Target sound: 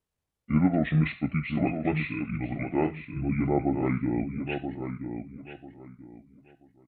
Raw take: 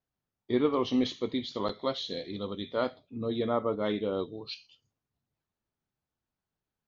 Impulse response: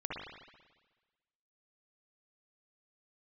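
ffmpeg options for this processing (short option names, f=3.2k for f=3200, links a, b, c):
-filter_complex "[0:a]asplit=2[a][b];[b]adelay=987,lowpass=f=3.3k:p=1,volume=-7.5dB,asplit=2[c][d];[d]adelay=987,lowpass=f=3.3k:p=1,volume=0.25,asplit=2[e][f];[f]adelay=987,lowpass=f=3.3k:p=1,volume=0.25[g];[a][c][e][g]amix=inputs=4:normalize=0,asetrate=26990,aresample=44100,atempo=1.63392,volume=3.5dB"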